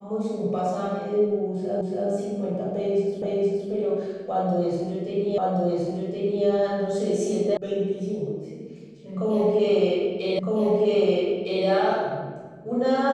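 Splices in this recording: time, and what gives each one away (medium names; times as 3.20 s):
1.81 s: repeat of the last 0.28 s
3.22 s: repeat of the last 0.47 s
5.38 s: repeat of the last 1.07 s
7.57 s: sound stops dead
10.39 s: repeat of the last 1.26 s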